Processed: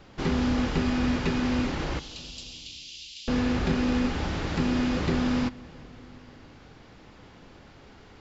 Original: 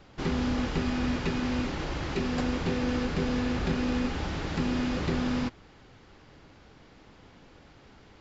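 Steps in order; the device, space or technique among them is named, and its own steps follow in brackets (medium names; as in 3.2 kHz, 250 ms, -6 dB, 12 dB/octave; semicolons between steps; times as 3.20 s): 1.99–3.28 s: steep high-pass 2.9 kHz 48 dB/octave; compressed reverb return (on a send at -6.5 dB: reverberation RT60 1.6 s, pre-delay 15 ms + compression, threshold -37 dBFS, peak gain reduction 14.5 dB); on the sum: trim +2.5 dB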